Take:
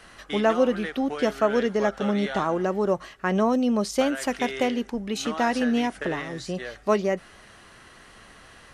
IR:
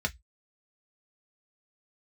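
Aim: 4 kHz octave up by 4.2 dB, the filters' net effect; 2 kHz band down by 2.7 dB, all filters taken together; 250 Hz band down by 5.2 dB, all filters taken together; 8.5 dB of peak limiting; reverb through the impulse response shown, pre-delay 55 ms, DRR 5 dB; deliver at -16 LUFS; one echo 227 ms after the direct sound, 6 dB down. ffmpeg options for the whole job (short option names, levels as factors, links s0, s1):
-filter_complex "[0:a]equalizer=f=250:t=o:g=-6,equalizer=f=2000:t=o:g=-5,equalizer=f=4000:t=o:g=7.5,alimiter=limit=0.106:level=0:latency=1,aecho=1:1:227:0.501,asplit=2[s0][s1];[1:a]atrim=start_sample=2205,adelay=55[s2];[s1][s2]afir=irnorm=-1:irlink=0,volume=0.266[s3];[s0][s3]amix=inputs=2:normalize=0,volume=3.98"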